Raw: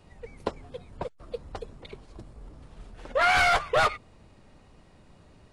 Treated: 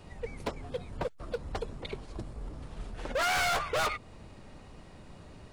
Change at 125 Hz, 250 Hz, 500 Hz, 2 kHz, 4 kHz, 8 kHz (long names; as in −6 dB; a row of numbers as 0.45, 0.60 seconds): +0.5, +1.0, −4.5, −7.0, −3.0, +1.5 decibels